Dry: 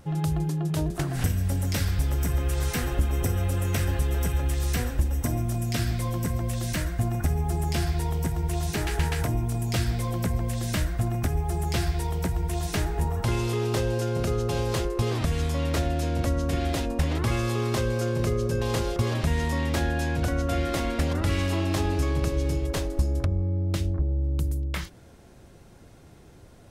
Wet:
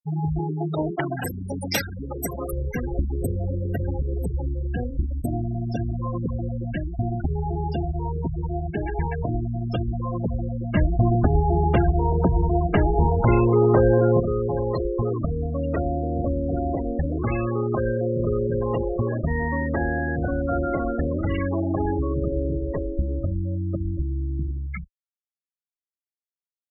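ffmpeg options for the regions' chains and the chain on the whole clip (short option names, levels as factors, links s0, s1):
-filter_complex "[0:a]asettb=1/sr,asplit=3[s0][s1][s2];[s0]atrim=end=0.394[s3];[s1]atrim=start=0.39:end=2.53,asetpts=PTS-STARTPTS,afade=t=in:d=0.004:c=qsin,afade=t=out:st=2.136:d=0.004:c=qsin,volume=11.9,asoftclip=hard,volume=0.0841,acontrast=87,highpass=f=440:p=1[s4];[s2]atrim=start=2.526[s5];[s3][s4]acrossfade=d=0.004:c1=hsin:c2=qsin[s6];[s6][s5]acrossfade=d=0.004:c1=qsin:c2=hsin,asettb=1/sr,asplit=3[s7][s8][s9];[s7]atrim=end=10.754[s10];[s8]atrim=start=10.75:end=14.2,asetpts=PTS-STARTPTS,afade=t=in:d=0.004:c=qsin,afade=t=out:st=3.446:d=0.004:c=qsin,lowpass=f=1600:p=1,acontrast=81[s11];[s9]atrim=start=14.196[s12];[s10][s11]acrossfade=d=0.004:c1=hsin:c2=qsin[s13];[s13][s12]acrossfade=d=0.004:c1=qsin:c2=hsin,afftfilt=real='re*gte(hypot(re,im),0.0794)':imag='im*gte(hypot(re,im),0.0794)':win_size=1024:overlap=0.75,equalizer=f=75:t=o:w=2.5:g=-7,volume=1.88"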